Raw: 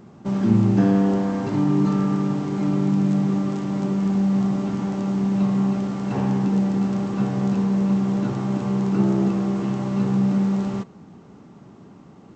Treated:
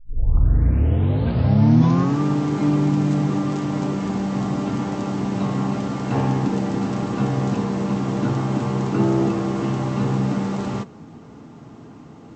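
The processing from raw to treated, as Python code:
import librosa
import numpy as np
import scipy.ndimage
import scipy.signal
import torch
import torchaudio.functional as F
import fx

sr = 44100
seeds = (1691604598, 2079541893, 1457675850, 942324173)

y = fx.tape_start_head(x, sr, length_s=2.21)
y = fx.notch_comb(y, sr, f0_hz=190.0)
y = F.gain(torch.from_numpy(y), 6.0).numpy()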